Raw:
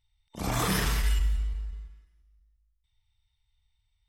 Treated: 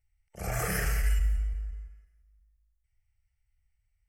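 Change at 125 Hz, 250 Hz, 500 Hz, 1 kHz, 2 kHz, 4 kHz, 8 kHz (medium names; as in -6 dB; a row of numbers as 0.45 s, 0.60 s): -1.5 dB, -8.0 dB, -1.5 dB, -5.5 dB, -0.5 dB, -10.0 dB, -2.5 dB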